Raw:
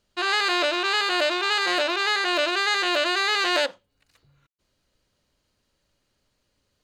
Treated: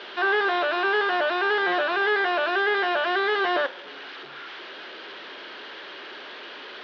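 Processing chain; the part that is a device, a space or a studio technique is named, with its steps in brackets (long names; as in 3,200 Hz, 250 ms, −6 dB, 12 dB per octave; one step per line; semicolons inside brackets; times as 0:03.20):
digital answering machine (band-pass filter 320–3,100 Hz; linear delta modulator 32 kbit/s, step −37.5 dBFS; loudspeaker in its box 360–4,000 Hz, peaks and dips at 380 Hz +7 dB, 550 Hz −5 dB, 1,600 Hz +6 dB, 3,300 Hz +5 dB)
level +3 dB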